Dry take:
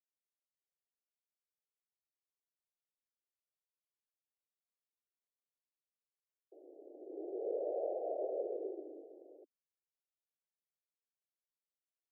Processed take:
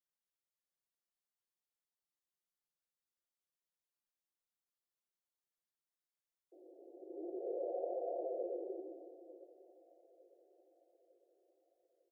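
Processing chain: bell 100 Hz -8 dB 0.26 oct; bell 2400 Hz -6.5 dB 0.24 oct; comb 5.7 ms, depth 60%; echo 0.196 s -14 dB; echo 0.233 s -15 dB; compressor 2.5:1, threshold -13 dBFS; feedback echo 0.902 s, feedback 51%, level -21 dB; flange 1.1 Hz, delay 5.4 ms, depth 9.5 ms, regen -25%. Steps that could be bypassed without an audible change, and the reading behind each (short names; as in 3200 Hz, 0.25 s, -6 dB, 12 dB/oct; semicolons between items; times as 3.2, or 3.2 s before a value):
bell 100 Hz: input band starts at 270 Hz; bell 2400 Hz: input band ends at 850 Hz; compressor, threshold -13 dBFS: input peak -25.0 dBFS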